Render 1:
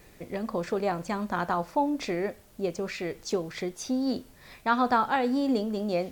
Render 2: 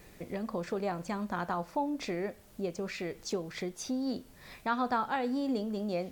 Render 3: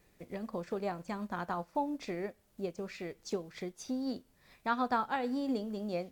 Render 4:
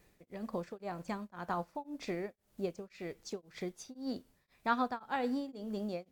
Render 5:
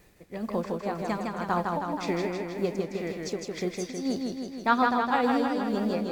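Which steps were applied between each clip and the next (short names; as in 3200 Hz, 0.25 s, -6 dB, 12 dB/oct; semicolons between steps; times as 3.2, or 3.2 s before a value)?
bell 190 Hz +3 dB 0.29 oct; in parallel at +3 dB: compressor, threshold -37 dBFS, peak gain reduction 17 dB; on the sum: gain -8.5 dB
upward expander 1.5:1, over -52 dBFS
beating tremolo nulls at 1.9 Hz; gain +1 dB
warbling echo 0.159 s, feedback 67%, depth 76 cents, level -3.5 dB; gain +8 dB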